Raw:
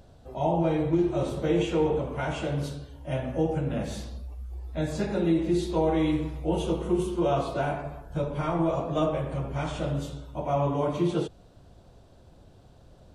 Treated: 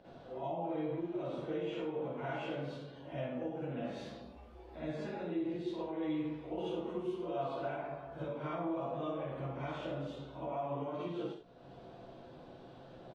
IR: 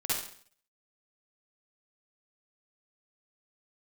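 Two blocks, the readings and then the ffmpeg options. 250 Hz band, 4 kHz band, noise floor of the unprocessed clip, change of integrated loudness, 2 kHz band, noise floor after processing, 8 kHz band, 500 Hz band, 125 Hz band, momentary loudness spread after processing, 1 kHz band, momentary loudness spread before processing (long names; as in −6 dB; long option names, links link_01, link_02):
−11.5 dB, −11.5 dB, −54 dBFS, −11.5 dB, −9.5 dB, −54 dBFS, below −20 dB, −11.0 dB, −15.0 dB, 16 LU, −10.0 dB, 11 LU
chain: -filter_complex "[0:a]acrossover=split=170 4000:gain=0.126 1 0.0708[link_01][link_02][link_03];[link_01][link_02][link_03]amix=inputs=3:normalize=0,alimiter=limit=-22dB:level=0:latency=1,acompressor=threshold=-55dB:ratio=2,asplit=2[link_04][link_05];[link_05]adelay=16,volume=-13dB[link_06];[link_04][link_06]amix=inputs=2:normalize=0[link_07];[1:a]atrim=start_sample=2205,afade=type=out:start_time=0.21:duration=0.01,atrim=end_sample=9702[link_08];[link_07][link_08]afir=irnorm=-1:irlink=0"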